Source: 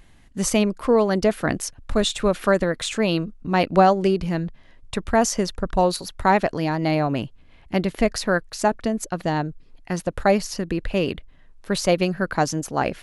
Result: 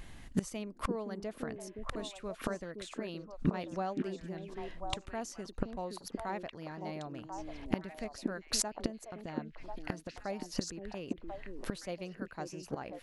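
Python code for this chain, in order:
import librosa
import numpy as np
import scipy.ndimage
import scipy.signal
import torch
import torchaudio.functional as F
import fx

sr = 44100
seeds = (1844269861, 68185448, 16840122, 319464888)

y = fx.gate_flip(x, sr, shuts_db=-20.0, range_db=-24)
y = fx.echo_stepped(y, sr, ms=520, hz=300.0, octaves=1.4, feedback_pct=70, wet_db=-1)
y = F.gain(torch.from_numpy(y), 2.5).numpy()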